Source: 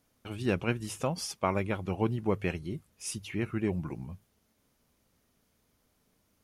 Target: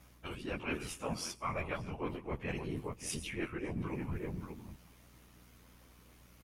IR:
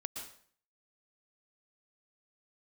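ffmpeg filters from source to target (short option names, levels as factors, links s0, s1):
-filter_complex "[0:a]asplit=2[s0][s1];[s1]adelay=583.1,volume=0.178,highshelf=f=4000:g=-13.1[s2];[s0][s2]amix=inputs=2:normalize=0,asplit=2[s3][s4];[1:a]atrim=start_sample=2205,highshelf=f=10000:g=11[s5];[s4][s5]afir=irnorm=-1:irlink=0,volume=0.224[s6];[s3][s6]amix=inputs=2:normalize=0,afftfilt=real='hypot(re,im)*cos(PI*b)':imag='0':win_size=2048:overlap=0.75,areverse,acompressor=threshold=0.00631:ratio=12,areverse,equalizer=f=2400:w=1.3:g=5.5,afftfilt=real='hypot(re,im)*cos(2*PI*random(0))':imag='hypot(re,im)*sin(2*PI*random(1))':win_size=512:overlap=0.75,equalizer=f=1100:w=2.2:g=4.5,aeval=exprs='val(0)+0.000141*(sin(2*PI*60*n/s)+sin(2*PI*2*60*n/s)/2+sin(2*PI*3*60*n/s)/3+sin(2*PI*4*60*n/s)/4+sin(2*PI*5*60*n/s)/5)':c=same,volume=5.96"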